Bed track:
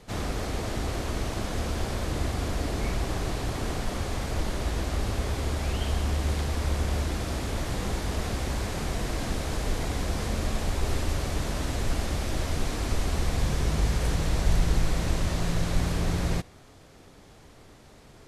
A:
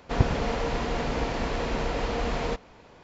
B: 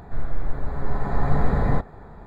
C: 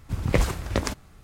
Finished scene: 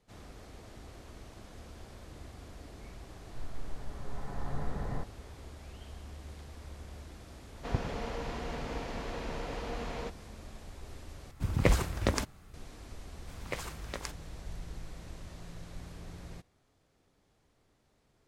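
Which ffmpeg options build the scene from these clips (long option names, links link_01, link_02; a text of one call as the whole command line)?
ffmpeg -i bed.wav -i cue0.wav -i cue1.wav -i cue2.wav -filter_complex "[3:a]asplit=2[link_01][link_02];[0:a]volume=-19.5dB[link_03];[link_02]highpass=frequency=810:poles=1[link_04];[link_03]asplit=2[link_05][link_06];[link_05]atrim=end=11.314[link_07];[link_01]atrim=end=1.23,asetpts=PTS-STARTPTS,volume=-3.5dB[link_08];[link_06]atrim=start=12.536[link_09];[2:a]atrim=end=2.26,asetpts=PTS-STARTPTS,volume=-15.5dB,afade=type=in:duration=0.004:curve=hsin,afade=type=out:start_time=2.256:duration=0.004:curve=hsin,adelay=3230[link_10];[1:a]atrim=end=3.03,asetpts=PTS-STARTPTS,volume=-10dB,afade=type=in:duration=0.004:curve=hsin,afade=type=out:start_time=3.026:duration=0.004:curve=hsin,adelay=332514S[link_11];[link_04]atrim=end=1.23,asetpts=PTS-STARTPTS,volume=-9.5dB,afade=type=in:duration=0.004:curve=hsin,afade=type=out:start_time=1.226:duration=0.004:curve=hsin,adelay=13180[link_12];[link_07][link_08]acrossfade=duration=0.004:curve1=hsin:curve2=hsin[link_13];[link_13][link_09]acrossfade=duration=0.004:curve1=hsin:curve2=hsin[link_14];[link_14][link_10][link_11][link_12]amix=inputs=4:normalize=0" out.wav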